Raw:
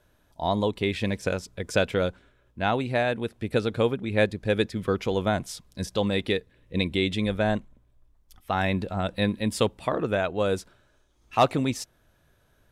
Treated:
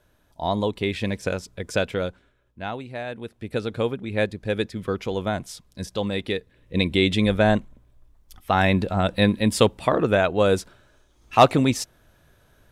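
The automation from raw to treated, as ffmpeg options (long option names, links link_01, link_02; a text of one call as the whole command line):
ffmpeg -i in.wav -af "volume=16dB,afade=type=out:start_time=1.54:duration=1.38:silence=0.316228,afade=type=in:start_time=2.92:duration=0.84:silence=0.398107,afade=type=in:start_time=6.31:duration=0.82:silence=0.446684" out.wav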